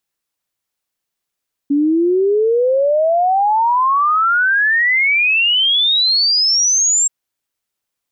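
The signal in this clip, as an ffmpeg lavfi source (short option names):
-f lavfi -i "aevalsrc='0.282*clip(min(t,5.38-t)/0.01,0,1)*sin(2*PI*280*5.38/log(7600/280)*(exp(log(7600/280)*t/5.38)-1))':d=5.38:s=44100"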